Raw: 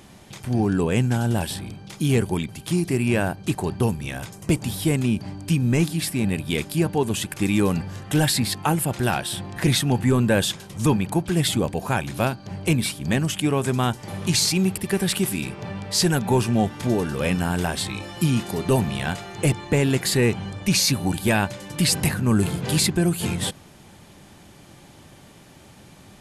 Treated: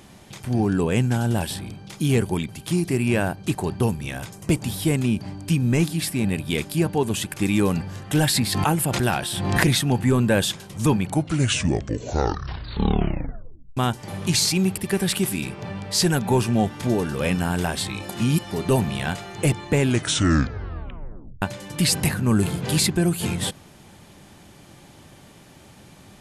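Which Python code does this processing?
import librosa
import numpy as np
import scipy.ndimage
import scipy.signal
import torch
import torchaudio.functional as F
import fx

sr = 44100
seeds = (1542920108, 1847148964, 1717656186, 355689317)

y = fx.pre_swell(x, sr, db_per_s=38.0, at=(8.25, 9.67))
y = fx.edit(y, sr, fx.tape_stop(start_s=10.97, length_s=2.8),
    fx.reverse_span(start_s=18.09, length_s=0.42),
    fx.tape_stop(start_s=19.8, length_s=1.62), tone=tone)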